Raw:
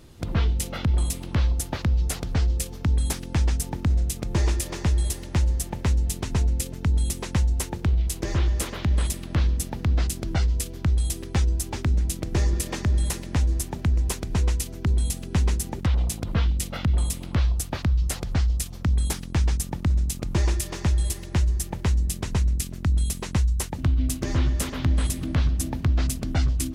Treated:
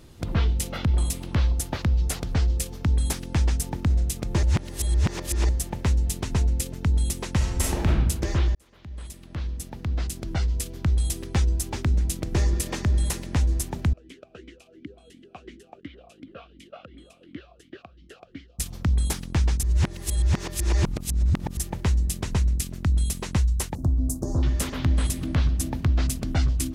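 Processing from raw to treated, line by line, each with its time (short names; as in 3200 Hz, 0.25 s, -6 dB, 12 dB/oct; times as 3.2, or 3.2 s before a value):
4.43–5.49 reverse
7.36–7.95 reverb throw, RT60 0.89 s, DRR -4 dB
8.55–11 fade in
13.93–18.59 vowel sweep a-i 2.8 Hz
19.63–21.57 reverse
23.75–24.43 Chebyshev band-stop 770–7400 Hz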